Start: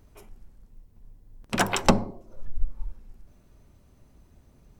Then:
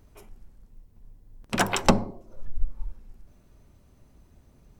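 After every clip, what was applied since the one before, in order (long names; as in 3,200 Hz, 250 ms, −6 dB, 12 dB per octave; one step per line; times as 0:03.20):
no processing that can be heard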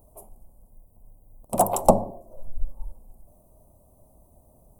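drawn EQ curve 410 Hz 0 dB, 640 Hz +13 dB, 1,100 Hz 0 dB, 1,600 Hz −24 dB, 2,700 Hz −17 dB, 5,700 Hz −10 dB, 9,400 Hz +13 dB
level −1.5 dB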